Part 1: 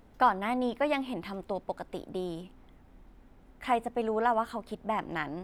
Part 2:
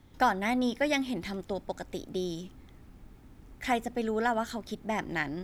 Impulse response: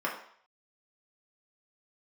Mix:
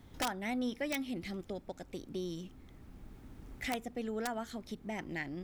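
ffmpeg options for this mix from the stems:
-filter_complex "[0:a]acompressor=threshold=-34dB:ratio=4,volume=-10.5dB,asplit=2[link_01][link_02];[1:a]aeval=exprs='(mod(6.31*val(0)+1,2)-1)/6.31':channel_layout=same,volume=1dB[link_03];[link_02]apad=whole_len=239858[link_04];[link_03][link_04]sidechaincompress=threshold=-51dB:ratio=4:attack=9.4:release=1490[link_05];[link_01][link_05]amix=inputs=2:normalize=0"

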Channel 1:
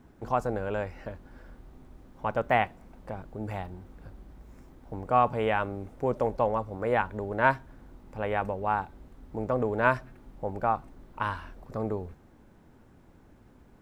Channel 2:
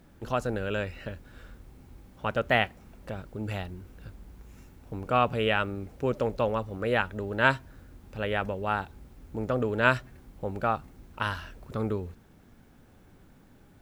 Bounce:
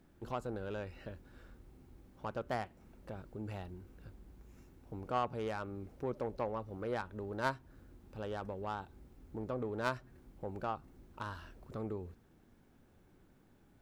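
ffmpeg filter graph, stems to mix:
ffmpeg -i stem1.wav -i stem2.wav -filter_complex "[0:a]volume=-11dB[link_01];[1:a]acompressor=threshold=-31dB:ratio=2.5,asoftclip=type=tanh:threshold=-28.5dB,volume=-4dB[link_02];[link_01][link_02]amix=inputs=2:normalize=0,equalizer=frequency=350:width_type=o:width=0.43:gain=4,aeval=exprs='0.126*(cos(1*acos(clip(val(0)/0.126,-1,1)))-cos(1*PI/2))+0.0251*(cos(3*acos(clip(val(0)/0.126,-1,1)))-cos(3*PI/2))+0.002*(cos(5*acos(clip(val(0)/0.126,-1,1)))-cos(5*PI/2))':channel_layout=same" out.wav

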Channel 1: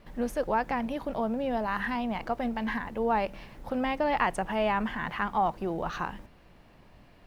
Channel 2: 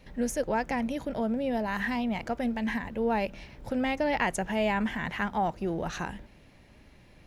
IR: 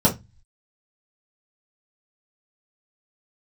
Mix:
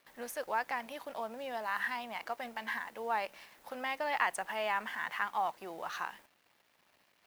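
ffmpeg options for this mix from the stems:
-filter_complex "[0:a]aeval=exprs='sgn(val(0))*max(abs(val(0))-0.0015,0)':channel_layout=same,volume=-1.5dB[link_01];[1:a]lowpass=frequency=2300:width=0.5412,lowpass=frequency=2300:width=1.3066,volume=-1,volume=-13.5dB[link_02];[link_01][link_02]amix=inputs=2:normalize=0,highpass=frequency=1300:poles=1,highshelf=frequency=8700:gain=9.5"

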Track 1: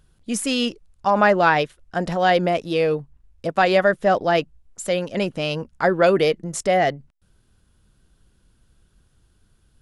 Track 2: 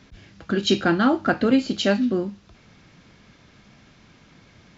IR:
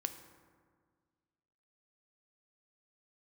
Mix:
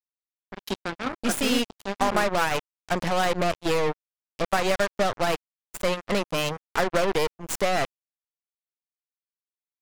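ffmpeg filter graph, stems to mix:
-filter_complex "[0:a]aeval=exprs='if(lt(val(0),0),0.447*val(0),val(0))':channel_layout=same,acompressor=threshold=-22dB:ratio=4,adelay=950,volume=2dB[link_01];[1:a]volume=-10.5dB[link_02];[link_01][link_02]amix=inputs=2:normalize=0,acrusher=bits=3:mix=0:aa=0.5"

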